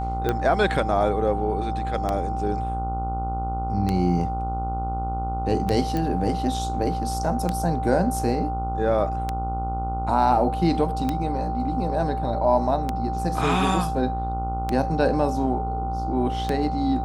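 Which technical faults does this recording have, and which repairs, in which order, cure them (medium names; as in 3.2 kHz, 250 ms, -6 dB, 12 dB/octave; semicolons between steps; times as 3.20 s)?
buzz 60 Hz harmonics 24 -29 dBFS
tick 33 1/3 rpm -11 dBFS
whine 780 Hz -28 dBFS
5.97 s: pop -14 dBFS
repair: de-click; de-hum 60 Hz, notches 24; band-stop 780 Hz, Q 30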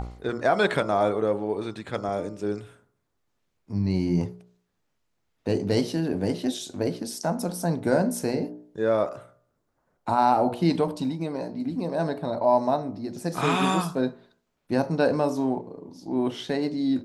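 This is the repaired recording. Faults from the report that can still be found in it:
nothing left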